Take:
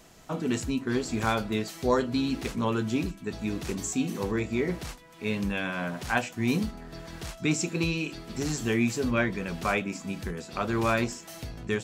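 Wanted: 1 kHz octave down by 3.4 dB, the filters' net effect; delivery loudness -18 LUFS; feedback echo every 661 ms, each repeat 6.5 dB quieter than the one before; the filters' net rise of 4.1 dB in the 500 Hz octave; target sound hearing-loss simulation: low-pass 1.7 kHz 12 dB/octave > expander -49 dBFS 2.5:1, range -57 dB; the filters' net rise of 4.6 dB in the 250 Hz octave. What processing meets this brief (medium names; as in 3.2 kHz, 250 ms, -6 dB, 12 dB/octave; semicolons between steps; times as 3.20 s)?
low-pass 1.7 kHz 12 dB/octave; peaking EQ 250 Hz +4.5 dB; peaking EQ 500 Hz +5 dB; peaking EQ 1 kHz -6 dB; feedback delay 661 ms, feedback 47%, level -6.5 dB; expander -49 dBFS 2.5:1, range -57 dB; trim +8 dB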